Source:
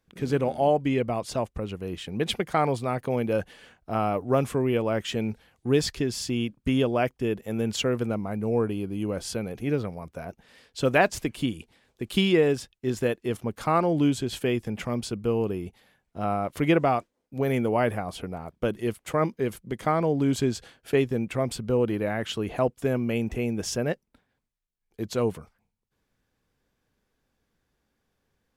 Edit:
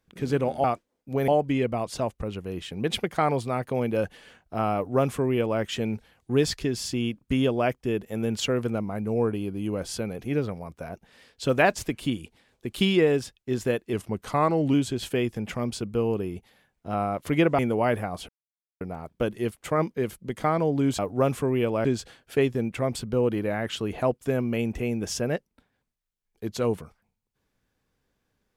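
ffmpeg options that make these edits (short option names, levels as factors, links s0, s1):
-filter_complex "[0:a]asplit=9[s0][s1][s2][s3][s4][s5][s6][s7][s8];[s0]atrim=end=0.642[s9];[s1]atrim=start=16.888:end=17.532[s10];[s2]atrim=start=0.638:end=13.294[s11];[s3]atrim=start=13.29:end=14.04,asetpts=PTS-STARTPTS,asetrate=41013,aresample=44100[s12];[s4]atrim=start=14.036:end=16.892[s13];[s5]atrim=start=17.528:end=18.23,asetpts=PTS-STARTPTS,afade=t=out:st=0.698:d=0.004:c=hsin,apad=pad_dur=0.52[s14];[s6]atrim=start=18.23:end=20.412,asetpts=PTS-STARTPTS,afade=t=in:d=0.004:c=hsin[s15];[s7]atrim=start=4.108:end=4.972[s16];[s8]atrim=start=20.408[s17];[s9][s10]acrossfade=d=0.004:c1=hsin:c2=hsin[s18];[s18][s11]acrossfade=d=0.004:c1=hsin:c2=hsin[s19];[s19][s12]acrossfade=d=0.004:c1=hsin:c2=hsin[s20];[s20][s13]acrossfade=d=0.004:c1=hsin:c2=hsin[s21];[s14][s15]concat=n=2:v=0:a=1[s22];[s21][s22]acrossfade=d=0.004:c1=hsin:c2=hsin[s23];[s23][s16]acrossfade=d=0.004:c1=hsin:c2=hsin[s24];[s24][s17]acrossfade=d=0.004:c1=hsin:c2=hsin"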